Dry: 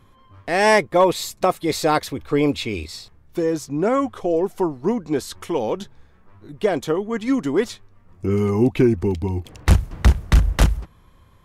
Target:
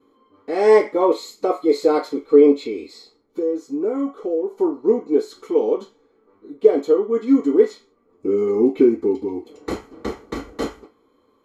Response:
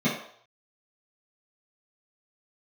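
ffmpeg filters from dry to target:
-filter_complex "[1:a]atrim=start_sample=2205,asetrate=83790,aresample=44100[a];[0:a][a]afir=irnorm=-1:irlink=0,asettb=1/sr,asplit=3[b][c][d];[b]atrim=end=2.534[e];[c]atrim=start=2.53:end=4.58,asetpts=PTS-STARTPTS,afade=t=in:d=0.004:c=qsin,afade=t=out:st=2.046:d=0.004:c=qsin,acompressor=threshold=-9dB:ratio=2[f];[d]atrim=start=4.576[g];[e][f]acrossfade=d=0.004:c1=hsin:c2=qsin[h];[h][g]acrossfade=d=0.004:c1=qsin:c2=hsin,volume=-15dB"

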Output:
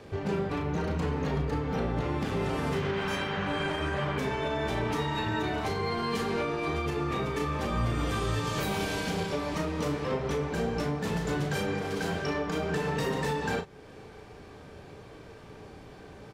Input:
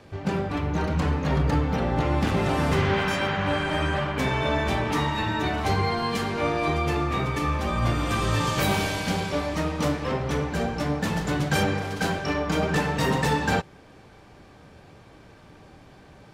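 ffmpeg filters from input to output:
-filter_complex "[0:a]equalizer=f=430:w=5.5:g=8.5,alimiter=limit=-21.5dB:level=0:latency=1:release=293,asplit=2[a][b];[b]adelay=35,volume=-7dB[c];[a][c]amix=inputs=2:normalize=0"

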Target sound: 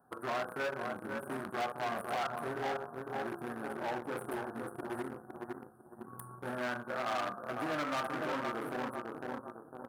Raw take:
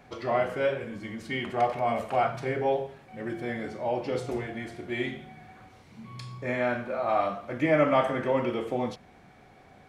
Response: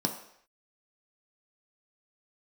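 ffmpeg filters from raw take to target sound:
-filter_complex "[0:a]asplit=2[a][b];[b]adelay=503,lowpass=f=1.8k:p=1,volume=-6.5dB,asplit=2[c][d];[d]adelay=503,lowpass=f=1.8k:p=1,volume=0.47,asplit=2[e][f];[f]adelay=503,lowpass=f=1.8k:p=1,volume=0.47,asplit=2[g][h];[h]adelay=503,lowpass=f=1.8k:p=1,volume=0.47,asplit=2[i][j];[j]adelay=503,lowpass=f=1.8k:p=1,volume=0.47,asplit=2[k][l];[l]adelay=503,lowpass=f=1.8k:p=1,volume=0.47[m];[a][c][e][g][i][k][m]amix=inputs=7:normalize=0,acompressor=threshold=-34dB:ratio=2,highshelf=f=5.7k:g=7,acontrast=88,aeval=exprs='0.237*(cos(1*acos(clip(val(0)/0.237,-1,1)))-cos(1*PI/2))+0.00531*(cos(4*acos(clip(val(0)/0.237,-1,1)))-cos(4*PI/2))+0.00596*(cos(5*acos(clip(val(0)/0.237,-1,1)))-cos(5*PI/2))+0.0335*(cos(7*acos(clip(val(0)/0.237,-1,1)))-cos(7*PI/2))':c=same,asuperstop=centerf=3900:order=20:qfactor=0.53,equalizer=f=570:w=1.5:g=-6,asoftclip=type=hard:threshold=-32dB,highpass=f=370:p=1,volume=1.5dB"

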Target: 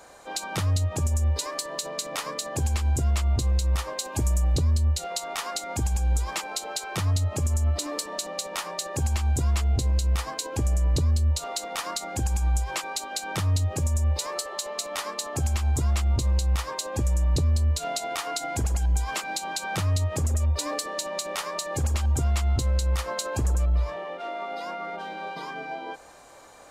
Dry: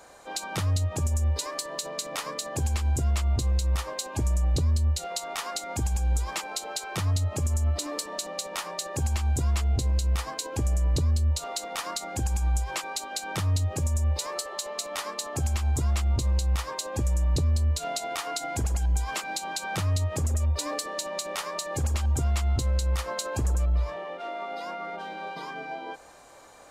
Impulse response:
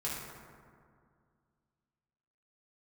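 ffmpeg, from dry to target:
-filter_complex "[0:a]asettb=1/sr,asplit=3[a][b][c];[a]atrim=end=4.054[d];[b]atrim=start=4.05:end=4.55,asetpts=PTS-STARTPTS,afade=t=in:d=0.004:c=qsin,afade=t=out:st=0.496:d=0.004:c=qsin,highshelf=f=8.4k:g=8.5[e];[c]atrim=start=4.546[f];[d][e]acrossfade=d=0.004:c1=hsin:c2=qsin[g];[g][f]acrossfade=d=0.004:c1=qsin:c2=hsin,volume=1.5dB"

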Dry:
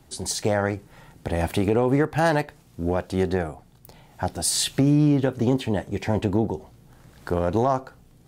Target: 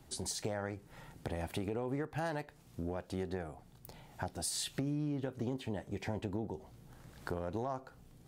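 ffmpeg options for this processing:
-af "acompressor=threshold=-33dB:ratio=3,volume=-5dB"

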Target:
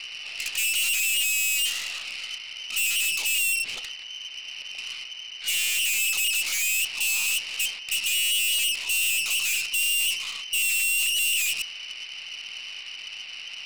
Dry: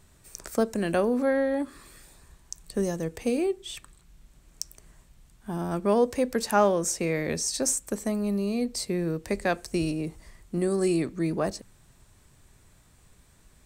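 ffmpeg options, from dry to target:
-filter_complex "[0:a]asplit=2[a][b];[b]highpass=f=720:p=1,volume=37dB,asoftclip=type=tanh:threshold=-10dB[c];[a][c]amix=inputs=2:normalize=0,lowpass=f=1.2k:p=1,volume=-6dB,lowpass=f=2.6k:t=q:w=0.5098,lowpass=f=2.6k:t=q:w=0.6013,lowpass=f=2.6k:t=q:w=0.9,lowpass=f=2.6k:t=q:w=2.563,afreqshift=-3100,aeval=exprs='(tanh(39.8*val(0)+0.65)-tanh(0.65))/39.8':c=same,aexciter=amount=4.6:drive=9.4:freq=2.4k,volume=-8dB"

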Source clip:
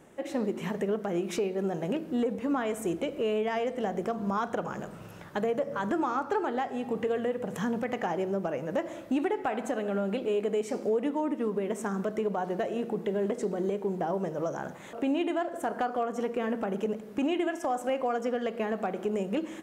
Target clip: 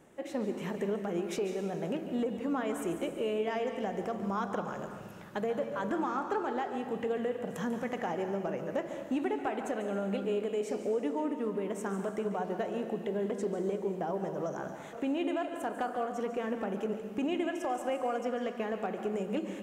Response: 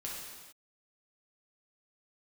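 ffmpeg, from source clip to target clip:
-filter_complex "[0:a]asplit=2[a][b];[1:a]atrim=start_sample=2205,adelay=142[c];[b][c]afir=irnorm=-1:irlink=0,volume=-7.5dB[d];[a][d]amix=inputs=2:normalize=0,volume=-4dB"

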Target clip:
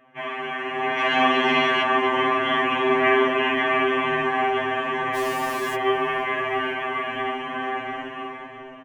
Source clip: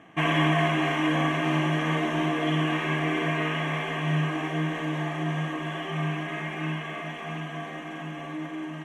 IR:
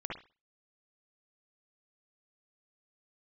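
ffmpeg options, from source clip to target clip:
-filter_complex "[0:a]acrossover=split=200 2900:gain=0.251 1 0.126[a][b][c];[a][b][c]amix=inputs=3:normalize=0,dynaudnorm=f=210:g=9:m=13dB,asettb=1/sr,asplit=3[d][e][f];[d]atrim=end=0.984[g];[e]atrim=start=0.98:end=1.83,asetpts=PTS-STARTPTS,afade=t=in:d=0.004:c=qsin,afade=t=out:st=0.846:d=0.004:c=qsin,equalizer=f=4.3k:t=o:w=1.3:g=12.5[h];[f]atrim=start=1.826[i];[g][h]acrossfade=d=0.004:c1=hsin:c2=qsin[j];[j][i]acrossfade=d=0.004:c1=qsin:c2=hsin,asettb=1/sr,asplit=3[k][l][m];[k]atrim=end=5.154[n];[l]atrim=start=5.15:end=5.75,asetpts=PTS-STARTPTS,afade=t=in:d=0.004:c=qsin,afade=t=out:st=0.596:d=0.004:c=qsin,acrusher=bits=4:mix=0:aa=0.5[o];[m]atrim=start=5.746[p];[n][o]acrossfade=d=0.004:c1=hsin:c2=qsin[q];[q][p]acrossfade=d=0.004:c1=qsin:c2=hsin,asplit=5[r][s][t][u][v];[s]adelay=489,afreqshift=-42,volume=-23dB[w];[t]adelay=978,afreqshift=-84,volume=-28.2dB[x];[u]adelay=1467,afreqshift=-126,volume=-33.4dB[y];[v]adelay=1956,afreqshift=-168,volume=-38.6dB[z];[r][w][x][y][z]amix=inputs=5:normalize=0,afftfilt=real='re*2.45*eq(mod(b,6),0)':imag='im*2.45*eq(mod(b,6),0)':win_size=2048:overlap=0.75"

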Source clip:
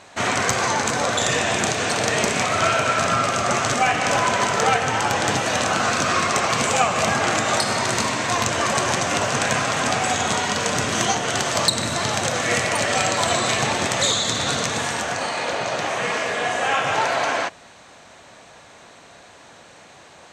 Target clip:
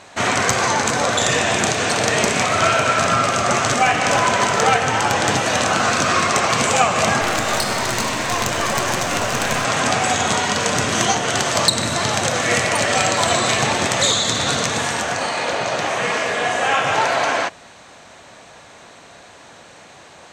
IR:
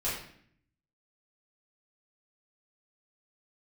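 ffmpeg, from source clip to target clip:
-filter_complex "[0:a]asettb=1/sr,asplit=3[a][b][c];[a]atrim=end=7.214[d];[b]atrim=start=7.21:end=9.65,asetpts=PTS-STARTPTS,afade=t=in:d=0.004:c=qsin,afade=t=out:st=2.436:d=0.004:c=qsin,aeval=exprs='clip(val(0),-1,0.0501)':c=same[e];[c]atrim=start=9.646[f];[d][e]acrossfade=d=0.004:c1=hsin:c2=qsin[g];[g][f]acrossfade=d=0.004:c1=qsin:c2=hsin,volume=3dB"

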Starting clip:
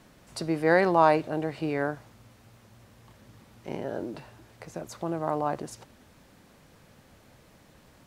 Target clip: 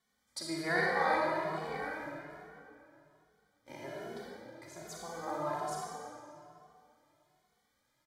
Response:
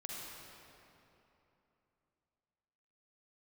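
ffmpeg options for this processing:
-filter_complex "[0:a]tiltshelf=f=850:g=-7,aecho=1:1:644|1288|1932:0.0668|0.0287|0.0124,agate=range=-15dB:threshold=-46dB:ratio=16:detection=peak,asettb=1/sr,asplit=3[a][b][c];[a]atrim=end=0.794[d];[b]atrim=start=0.79:end=3.69,asetpts=PTS-STARTPTS,afade=t=in:d=0.004:c=qsin,afade=t=out:st=2.896:d=0.004:c=qsin,tremolo=f=90:d=0.71[e];[c]atrim=start=3.686[f];[d][e]acrossfade=d=0.004:c1=hsin:c2=qsin[g];[g][f]acrossfade=d=0.004:c1=qsin:c2=hsin,asuperstop=centerf=2700:order=8:qfactor=5.9[h];[1:a]atrim=start_sample=2205,asetrate=52920,aresample=44100[i];[h][i]afir=irnorm=-1:irlink=0,asplit=2[j][k];[k]adelay=2.3,afreqshift=1.2[l];[j][l]amix=inputs=2:normalize=1"

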